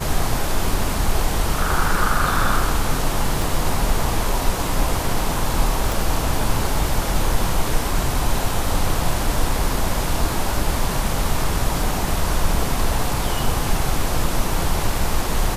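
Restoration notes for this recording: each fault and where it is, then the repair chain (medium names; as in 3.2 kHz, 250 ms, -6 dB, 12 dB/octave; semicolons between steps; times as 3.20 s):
3.42 s: pop
5.92 s: pop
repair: de-click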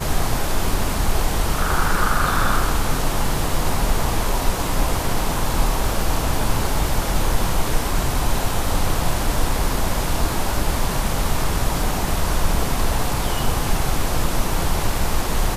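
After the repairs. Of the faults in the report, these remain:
3.42 s: pop
5.92 s: pop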